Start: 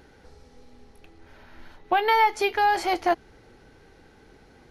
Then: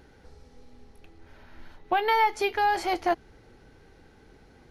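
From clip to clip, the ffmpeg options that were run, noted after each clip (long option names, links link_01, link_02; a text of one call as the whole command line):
ffmpeg -i in.wav -af "lowshelf=frequency=200:gain=4,volume=-3dB" out.wav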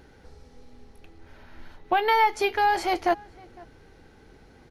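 ffmpeg -i in.wav -filter_complex "[0:a]asplit=2[link_01][link_02];[link_02]adelay=507.3,volume=-24dB,highshelf=frequency=4000:gain=-11.4[link_03];[link_01][link_03]amix=inputs=2:normalize=0,volume=2dB" out.wav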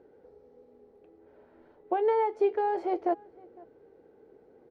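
ffmpeg -i in.wav -af "bandpass=frequency=450:width_type=q:width=2.7:csg=0,volume=3dB" out.wav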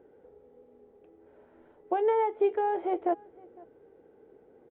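ffmpeg -i in.wav -af "aresample=8000,aresample=44100" out.wav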